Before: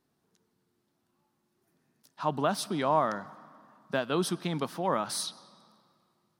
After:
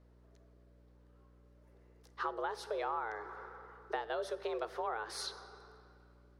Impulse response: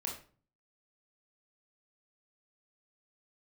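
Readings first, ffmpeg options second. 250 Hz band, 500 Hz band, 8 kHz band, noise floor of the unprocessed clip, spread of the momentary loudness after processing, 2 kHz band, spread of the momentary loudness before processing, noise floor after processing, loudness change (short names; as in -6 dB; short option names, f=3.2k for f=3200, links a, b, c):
-17.5 dB, -7.5 dB, -13.0 dB, -77 dBFS, 16 LU, -4.5 dB, 7 LU, -63 dBFS, -9.0 dB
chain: -filter_complex "[0:a]aemphasis=mode=reproduction:type=75kf,acompressor=threshold=-39dB:ratio=6,afreqshift=220,aeval=exprs='val(0)+0.000501*(sin(2*PI*60*n/s)+sin(2*PI*2*60*n/s)/2+sin(2*PI*3*60*n/s)/3+sin(2*PI*4*60*n/s)/4+sin(2*PI*5*60*n/s)/5)':c=same,asplit=2[a][b];[1:a]atrim=start_sample=2205,asetrate=26901,aresample=44100[c];[b][c]afir=irnorm=-1:irlink=0,volume=-18dB[d];[a][d]amix=inputs=2:normalize=0,volume=3dB"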